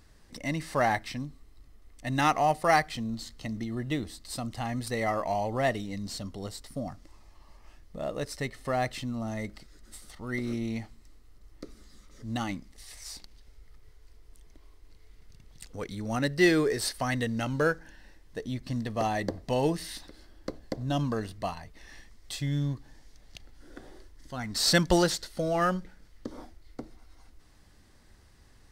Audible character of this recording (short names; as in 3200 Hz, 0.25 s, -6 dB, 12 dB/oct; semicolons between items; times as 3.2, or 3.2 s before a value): noise floor -57 dBFS; spectral tilt -4.5 dB/oct